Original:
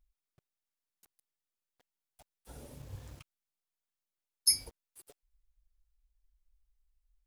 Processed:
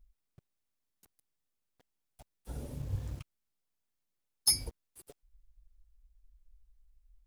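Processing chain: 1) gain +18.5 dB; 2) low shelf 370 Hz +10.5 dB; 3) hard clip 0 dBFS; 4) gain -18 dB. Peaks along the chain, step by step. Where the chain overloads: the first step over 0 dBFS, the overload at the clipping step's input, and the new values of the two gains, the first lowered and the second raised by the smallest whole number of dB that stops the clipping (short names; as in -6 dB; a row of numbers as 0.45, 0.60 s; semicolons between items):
+7.0, +7.0, 0.0, -18.0 dBFS; step 1, 7.0 dB; step 1 +11.5 dB, step 4 -11 dB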